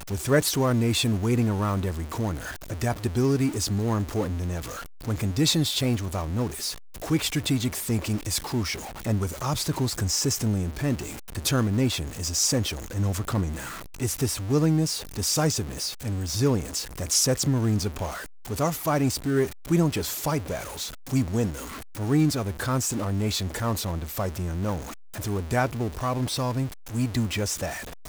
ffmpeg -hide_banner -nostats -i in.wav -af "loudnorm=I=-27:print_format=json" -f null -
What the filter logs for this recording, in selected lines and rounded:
"input_i" : "-26.4",
"input_tp" : "-9.6",
"input_lra" : "2.9",
"input_thresh" : "-36.5",